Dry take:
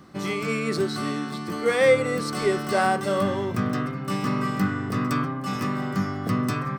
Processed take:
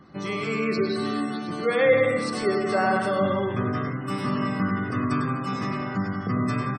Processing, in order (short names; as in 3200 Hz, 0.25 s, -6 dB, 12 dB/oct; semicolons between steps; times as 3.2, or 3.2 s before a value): on a send: bouncing-ball echo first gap 0.1 s, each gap 0.8×, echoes 5; on the sum: spectral gate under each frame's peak -30 dB strong; gain -2 dB